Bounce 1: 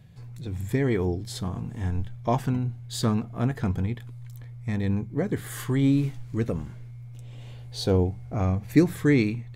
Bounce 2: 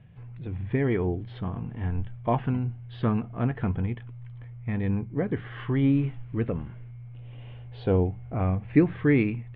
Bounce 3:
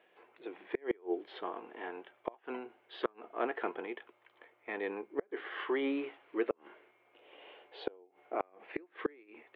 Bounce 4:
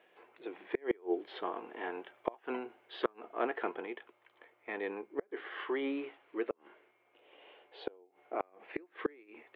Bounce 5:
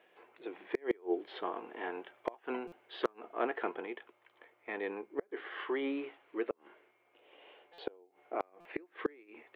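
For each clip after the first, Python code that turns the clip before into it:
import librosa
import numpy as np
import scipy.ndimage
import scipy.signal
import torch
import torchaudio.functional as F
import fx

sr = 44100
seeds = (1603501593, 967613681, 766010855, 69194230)

y1 = scipy.signal.sosfilt(scipy.signal.ellip(4, 1.0, 60, 3000.0, 'lowpass', fs=sr, output='sos'), x)
y2 = scipy.signal.sosfilt(scipy.signal.ellip(4, 1.0, 80, 350.0, 'highpass', fs=sr, output='sos'), y1)
y2 = fx.gate_flip(y2, sr, shuts_db=-21.0, range_db=-32)
y2 = F.gain(torch.from_numpy(y2), 1.5).numpy()
y3 = fx.rider(y2, sr, range_db=10, speed_s=2.0)
y4 = np.clip(y3, -10.0 ** (-20.0 / 20.0), 10.0 ** (-20.0 / 20.0))
y4 = fx.buffer_glitch(y4, sr, at_s=(2.67, 7.73, 8.6), block=256, repeats=8)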